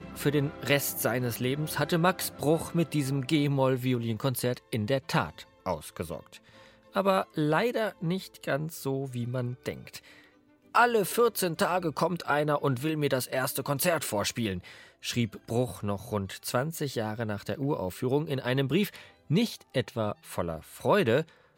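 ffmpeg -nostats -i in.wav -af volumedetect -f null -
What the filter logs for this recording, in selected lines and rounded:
mean_volume: -29.4 dB
max_volume: -9.8 dB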